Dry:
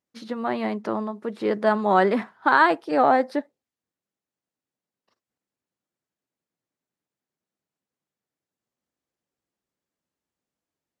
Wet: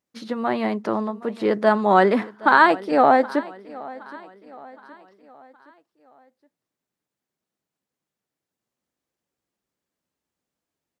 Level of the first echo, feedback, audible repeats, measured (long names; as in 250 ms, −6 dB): −20.0 dB, 47%, 3